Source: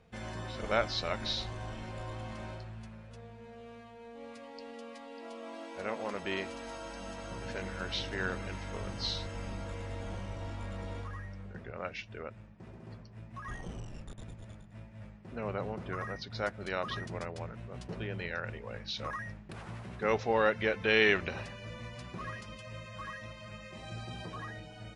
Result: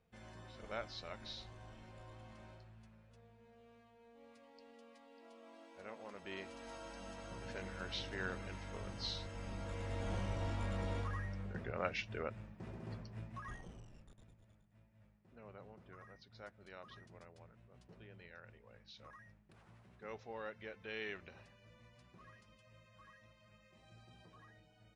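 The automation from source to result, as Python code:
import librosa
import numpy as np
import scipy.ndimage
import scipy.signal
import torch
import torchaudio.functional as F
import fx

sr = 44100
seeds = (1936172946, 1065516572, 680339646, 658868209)

y = fx.gain(x, sr, db=fx.line((6.14, -14.0), (6.73, -7.0), (9.34, -7.0), (10.18, 1.0), (13.19, 1.0), (13.7, -11.5), (14.47, -19.0)))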